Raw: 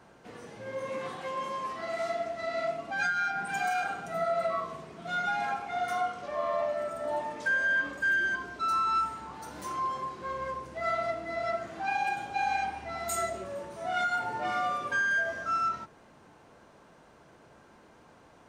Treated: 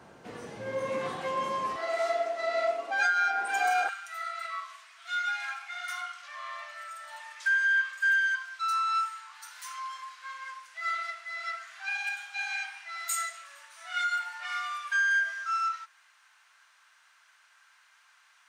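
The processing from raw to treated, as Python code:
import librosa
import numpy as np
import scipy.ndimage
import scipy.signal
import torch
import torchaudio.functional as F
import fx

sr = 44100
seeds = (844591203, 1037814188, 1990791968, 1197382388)

y = fx.highpass(x, sr, hz=fx.steps((0.0, 60.0), (1.76, 380.0), (3.89, 1400.0)), slope=24)
y = y * librosa.db_to_amplitude(3.5)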